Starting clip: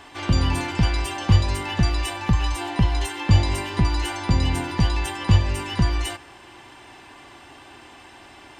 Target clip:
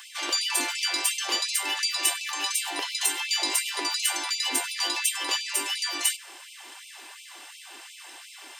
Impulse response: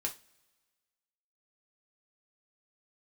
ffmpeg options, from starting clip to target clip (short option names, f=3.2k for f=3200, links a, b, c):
-af "crystalizer=i=5.5:c=0,afftfilt=real='re*gte(b*sr/1024,240*pow(2200/240,0.5+0.5*sin(2*PI*2.8*pts/sr)))':imag='im*gte(b*sr/1024,240*pow(2200/240,0.5+0.5*sin(2*PI*2.8*pts/sr)))':win_size=1024:overlap=0.75,volume=-5dB"